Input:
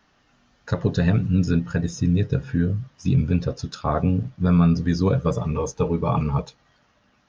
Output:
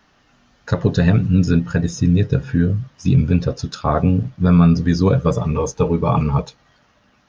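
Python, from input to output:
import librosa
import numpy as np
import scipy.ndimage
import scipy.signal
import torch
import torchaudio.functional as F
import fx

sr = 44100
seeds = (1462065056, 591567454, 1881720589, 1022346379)

y = F.gain(torch.from_numpy(x), 5.0).numpy()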